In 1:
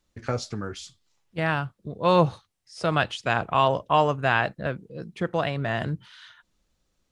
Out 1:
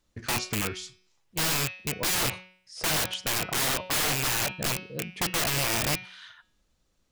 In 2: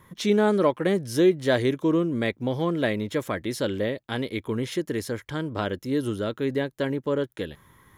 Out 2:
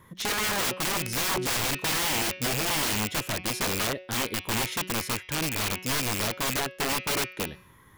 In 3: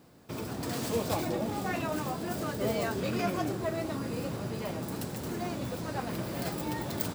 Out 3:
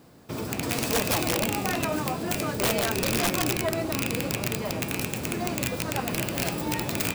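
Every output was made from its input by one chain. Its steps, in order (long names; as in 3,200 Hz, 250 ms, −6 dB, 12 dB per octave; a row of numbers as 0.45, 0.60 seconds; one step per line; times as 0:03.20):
loose part that buzzes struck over −33 dBFS, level −10 dBFS
hum removal 184.4 Hz, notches 33
wrap-around overflow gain 22 dB
loudness normalisation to −27 LKFS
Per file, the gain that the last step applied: +1.0, 0.0, +5.0 decibels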